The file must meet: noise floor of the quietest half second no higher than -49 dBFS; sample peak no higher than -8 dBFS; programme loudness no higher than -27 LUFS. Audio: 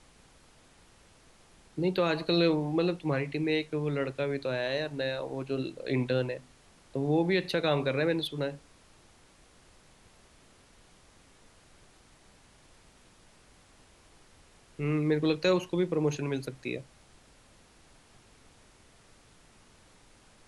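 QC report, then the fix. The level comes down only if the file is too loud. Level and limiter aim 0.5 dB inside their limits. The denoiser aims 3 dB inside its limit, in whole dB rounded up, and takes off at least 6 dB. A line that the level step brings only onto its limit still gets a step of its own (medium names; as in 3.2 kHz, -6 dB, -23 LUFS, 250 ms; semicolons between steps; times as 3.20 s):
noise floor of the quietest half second -59 dBFS: pass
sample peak -14.5 dBFS: pass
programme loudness -30.0 LUFS: pass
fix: none needed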